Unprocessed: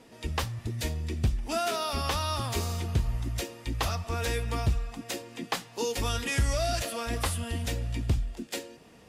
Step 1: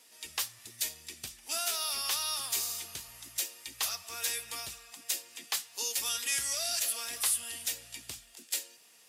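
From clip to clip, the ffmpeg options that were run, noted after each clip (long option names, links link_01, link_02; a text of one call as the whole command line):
ffmpeg -i in.wav -af "aderivative,volume=6.5dB" out.wav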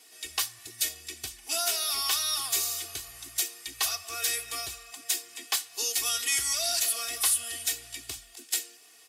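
ffmpeg -i in.wav -af "aecho=1:1:2.7:0.89,volume=2dB" out.wav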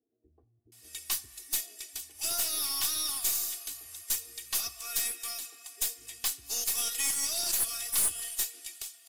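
ffmpeg -i in.wav -filter_complex "[0:a]acrossover=split=400[link_01][link_02];[link_02]adelay=720[link_03];[link_01][link_03]amix=inputs=2:normalize=0,crystalizer=i=1.5:c=0,aeval=exprs='(tanh(5.01*val(0)+0.45)-tanh(0.45))/5.01':channel_layout=same,volume=-6.5dB" out.wav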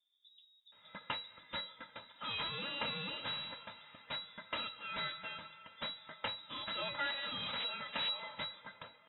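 ffmpeg -i in.wav -af "lowpass=frequency=3300:width_type=q:width=0.5098,lowpass=frequency=3300:width_type=q:width=0.6013,lowpass=frequency=3300:width_type=q:width=0.9,lowpass=frequency=3300:width_type=q:width=2.563,afreqshift=-3900,volume=2dB" out.wav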